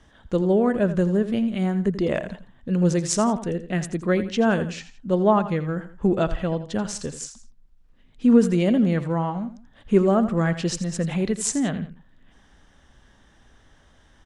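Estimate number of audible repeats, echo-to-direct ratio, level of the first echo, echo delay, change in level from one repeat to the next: 2, -12.5 dB, -13.0 dB, 84 ms, -8.5 dB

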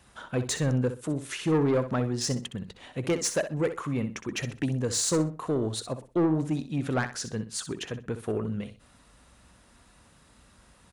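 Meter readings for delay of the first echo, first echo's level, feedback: 63 ms, -11.0 dB, 24%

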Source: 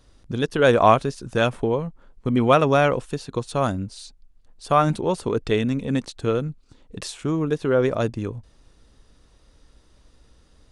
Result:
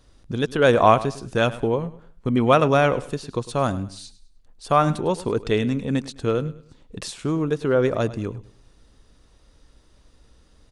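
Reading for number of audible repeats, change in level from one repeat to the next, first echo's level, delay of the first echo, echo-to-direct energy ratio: 2, -10.0 dB, -17.0 dB, 0.103 s, -16.5 dB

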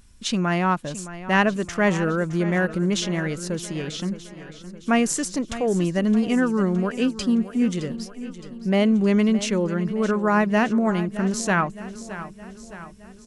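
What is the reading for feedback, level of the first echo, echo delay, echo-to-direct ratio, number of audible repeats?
55%, -14.0 dB, 0.616 s, -12.5 dB, 5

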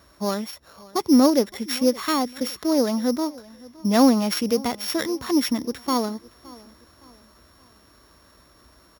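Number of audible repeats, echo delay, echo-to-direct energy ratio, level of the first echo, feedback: 2, 0.566 s, -21.5 dB, -22.0 dB, 39%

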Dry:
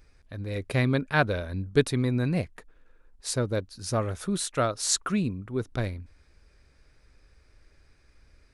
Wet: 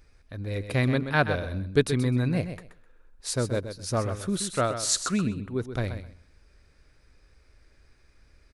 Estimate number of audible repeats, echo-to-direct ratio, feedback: 2, -9.5 dB, 19%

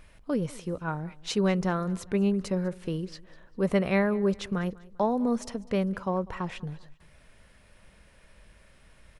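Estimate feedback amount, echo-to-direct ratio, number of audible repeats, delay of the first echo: 39%, -21.5 dB, 2, 0.198 s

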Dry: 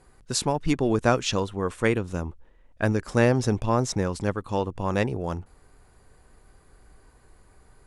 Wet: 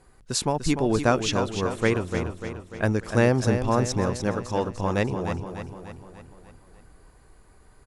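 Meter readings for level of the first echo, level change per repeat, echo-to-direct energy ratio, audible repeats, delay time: -8.5 dB, -5.5 dB, -7.0 dB, 5, 0.296 s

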